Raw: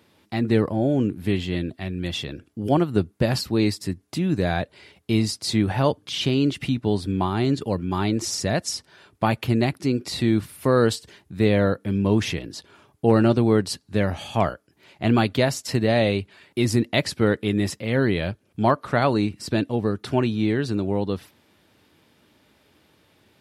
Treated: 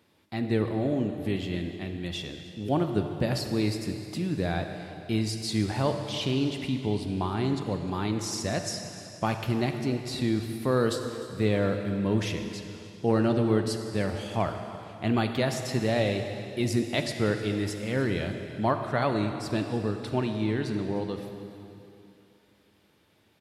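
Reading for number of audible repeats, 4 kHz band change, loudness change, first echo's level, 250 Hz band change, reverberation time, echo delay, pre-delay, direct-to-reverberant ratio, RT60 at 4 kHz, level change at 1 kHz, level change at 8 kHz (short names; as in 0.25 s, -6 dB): 1, -5.5 dB, -5.5 dB, -18.5 dB, -5.5 dB, 2.7 s, 0.303 s, 33 ms, 5.5 dB, 2.7 s, -5.5 dB, -5.5 dB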